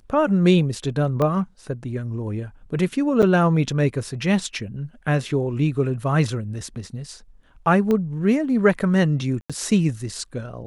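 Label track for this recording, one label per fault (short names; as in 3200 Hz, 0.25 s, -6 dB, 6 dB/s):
1.220000	1.220000	pop -12 dBFS
3.220000	3.230000	gap 7.1 ms
7.910000	7.910000	pop -12 dBFS
9.410000	9.500000	gap 86 ms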